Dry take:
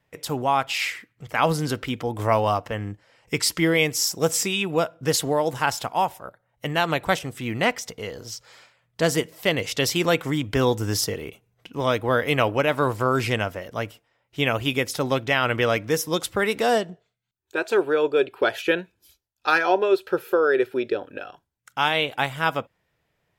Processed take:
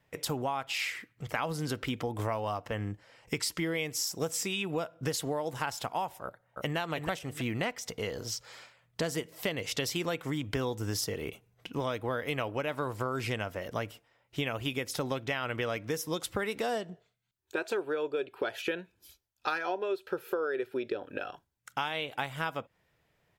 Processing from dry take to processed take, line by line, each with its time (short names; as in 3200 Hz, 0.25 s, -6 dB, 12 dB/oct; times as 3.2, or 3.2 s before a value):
6.24–6.77 echo throw 0.32 s, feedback 15%, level -3.5 dB
whole clip: compressor 6:1, threshold -30 dBFS